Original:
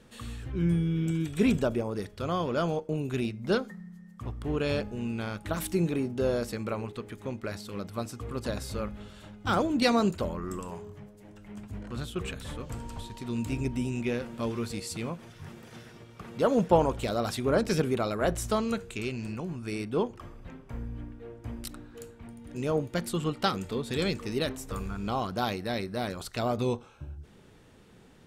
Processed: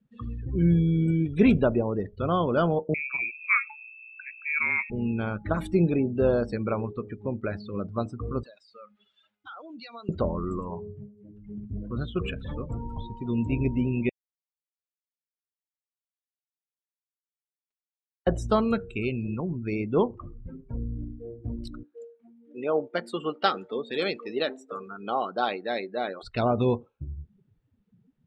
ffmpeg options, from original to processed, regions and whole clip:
ffmpeg -i in.wav -filter_complex "[0:a]asettb=1/sr,asplit=3[link_01][link_02][link_03];[link_01]atrim=end=2.944[link_04];[link_02]atrim=start=2.94:end=4.9,asetpts=PTS-STARTPTS,afade=type=in:duration=0.004:curve=qsin,afade=type=out:start_time=1.956:duration=0.004:curve=qsin,highpass=320,aeval=exprs='val(0)+0.00355*(sin(2*PI*60*n/s)+sin(2*PI*2*60*n/s)/2+sin(2*PI*3*60*n/s)/3+sin(2*PI*4*60*n/s)/4+sin(2*PI*5*60*n/s)/5)':channel_layout=same,lowpass=frequency=2300:width_type=q:width=0.5098,lowpass=frequency=2300:width_type=q:width=0.6013,lowpass=frequency=2300:width_type=q:width=0.9,lowpass=frequency=2300:width_type=q:width=2.563,afreqshift=-2700[link_05];[link_03]atrim=start=4.896[link_06];[link_04][link_05]acrossfade=duration=0.004:curve1=hsin:curve2=qsin[link_07];[link_07][link_06]acrossfade=duration=0.004:curve1=qsin:curve2=hsin,asettb=1/sr,asplit=3[link_08][link_09][link_10];[link_08]atrim=end=8.434[link_11];[link_09]atrim=start=8.43:end=10.09,asetpts=PTS-STARTPTS,afade=type=in:duration=0.004:curve=qsin,afade=type=out:start_time=1.656:duration=0.004:curve=qsin,highpass=frequency=570:poles=1,tiltshelf=frequency=1100:gain=-7,acompressor=threshold=-44dB:ratio=4:attack=3.2:release=140:knee=1:detection=peak[link_12];[link_10]atrim=start=10.086[link_13];[link_11][link_12]acrossfade=duration=0.004:curve1=hsin:curve2=qsin[link_14];[link_14][link_13]acrossfade=duration=0.004:curve1=qsin:curve2=hsin,asettb=1/sr,asplit=3[link_15][link_16][link_17];[link_15]atrim=end=14.094[link_18];[link_16]atrim=start=14.09:end=18.27,asetpts=PTS-STARTPTS,afade=type=in:duration=0.004:curve=qsin,afade=type=out:start_time=4.176:duration=0.004:curve=qsin,highpass=1500,acrusher=bits=2:mix=0:aa=0.5[link_19];[link_17]atrim=start=18.266[link_20];[link_18][link_19]acrossfade=duration=0.004:curve1=hsin:curve2=qsin[link_21];[link_21][link_20]acrossfade=duration=0.004:curve1=qsin:curve2=hsin,asettb=1/sr,asplit=3[link_22][link_23][link_24];[link_22]atrim=end=21.834[link_25];[link_23]atrim=start=21.83:end=26.23,asetpts=PTS-STARTPTS,afade=type=in:duration=0.004:curve=qsin,afade=type=out:start_time=4.396:duration=0.004:curve=qsin,highpass=390,bandreject=frequency=1000:width=11[link_26];[link_24]atrim=start=26.226[link_27];[link_25][link_26]acrossfade=duration=0.004:curve1=hsin:curve2=qsin[link_28];[link_28][link_27]acrossfade=duration=0.004:curve1=qsin:curve2=hsin,afftdn=noise_reduction=31:noise_floor=-40,lowpass=3900,volume=5dB" out.wav

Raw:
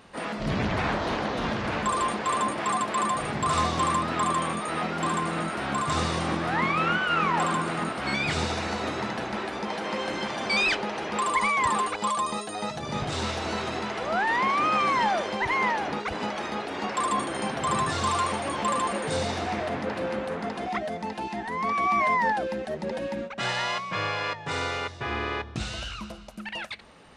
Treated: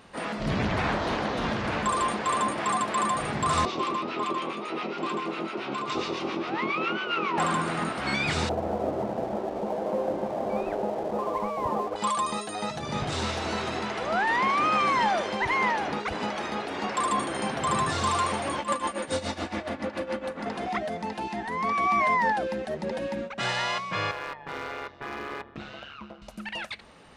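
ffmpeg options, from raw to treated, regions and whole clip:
ffmpeg -i in.wav -filter_complex "[0:a]asettb=1/sr,asplit=3[link_01][link_02][link_03];[link_01]atrim=end=3.654[link_04];[link_02]atrim=start=3.65:end=7.38,asetpts=PTS-STARTPTS,afade=type=in:duration=0.004:curve=qsin,afade=type=out:start_time=3.726:duration=0.004:curve=qsin,acrossover=split=1000[link_05][link_06];[link_05]aeval=exprs='val(0)*(1-0.7/2+0.7/2*cos(2*PI*7.3*n/s))':channel_layout=same[link_07];[link_06]aeval=exprs='val(0)*(1-0.7/2-0.7/2*cos(2*PI*7.3*n/s))':channel_layout=same[link_08];[link_07][link_08]amix=inputs=2:normalize=0,highpass=frequency=140:width=0.5412,highpass=frequency=140:width=1.3066,equalizer=frequency=170:width_type=q:width=4:gain=-9,equalizer=frequency=380:width_type=q:width=4:gain=9,equalizer=frequency=720:width_type=q:width=4:gain=-3,equalizer=frequency=1700:width_type=q:width=4:gain=-8,equalizer=frequency=2600:width_type=q:width=4:gain=5,lowpass=frequency=5900:width=0.5412,lowpass=frequency=5900:width=1.3066[link_09];[link_03]atrim=start=7.376[link_10];[link_04][link_09]acrossfade=duration=0.004:curve1=hsin:curve2=qsin[link_11];[link_11][link_10]acrossfade=duration=0.004:curve1=qsin:curve2=hsin,asettb=1/sr,asplit=3[link_12][link_13][link_14];[link_12]atrim=end=8.494[link_15];[link_13]atrim=start=8.49:end=11.96,asetpts=PTS-STARTPTS,afade=type=in:duration=0.004:curve=qsin,afade=type=out:start_time=3.466:duration=0.004:curve=qsin,lowpass=frequency=630:width_type=q:width=2.4,aeval=exprs='sgn(val(0))*max(abs(val(0))-0.00501,0)':channel_layout=same[link_16];[link_14]atrim=start=11.956[link_17];[link_15][link_16]acrossfade=duration=0.004:curve1=hsin:curve2=qsin[link_18];[link_18][link_17]acrossfade=duration=0.004:curve1=qsin:curve2=hsin,asettb=1/sr,asplit=3[link_19][link_20][link_21];[link_19]atrim=end=18.584[link_22];[link_20]atrim=start=18.58:end=20.46,asetpts=PTS-STARTPTS,afade=type=in:duration=0.004:curve=qsin,afade=type=out:start_time=1.876:duration=0.004:curve=qsin,bandreject=frequency=840:width=26,tremolo=f=7.1:d=0.81,aecho=1:1:3.5:0.52,atrim=end_sample=82908[link_23];[link_21]atrim=start=20.456[link_24];[link_22][link_23]acrossfade=duration=0.004:curve1=hsin:curve2=qsin[link_25];[link_25][link_24]acrossfade=duration=0.004:curve1=qsin:curve2=hsin,asettb=1/sr,asplit=3[link_26][link_27][link_28];[link_26]atrim=end=24.114[link_29];[link_27]atrim=start=24.11:end=26.22,asetpts=PTS-STARTPTS,afade=type=in:duration=0.004:curve=qsin,afade=type=out:start_time=2.106:duration=0.004:curve=qsin,highpass=190,lowpass=2300,asoftclip=type=hard:threshold=-28.5dB,tremolo=f=140:d=0.667[link_30];[link_28]atrim=start=26.216[link_31];[link_29][link_30]acrossfade=duration=0.004:curve1=hsin:curve2=qsin[link_32];[link_32][link_31]acrossfade=duration=0.004:curve1=qsin:curve2=hsin" out.wav

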